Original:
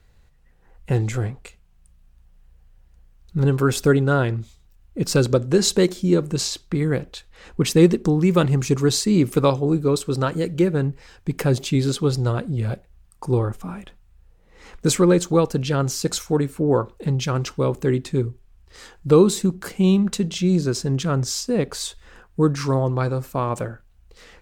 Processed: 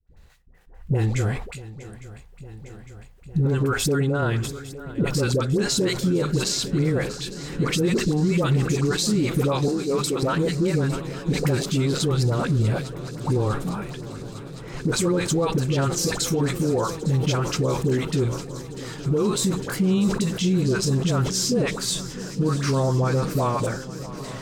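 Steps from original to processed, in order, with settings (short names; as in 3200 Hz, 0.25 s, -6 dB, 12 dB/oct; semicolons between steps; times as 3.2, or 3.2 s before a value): gate with hold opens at -46 dBFS; dispersion highs, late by 76 ms, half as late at 680 Hz; limiter -18 dBFS, peak gain reduction 15 dB; 9.68–10.23 HPF 280 Hz 24 dB/oct; swung echo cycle 0.856 s, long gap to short 3:1, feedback 76%, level -17 dB; sustainer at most 77 dB/s; gain +3.5 dB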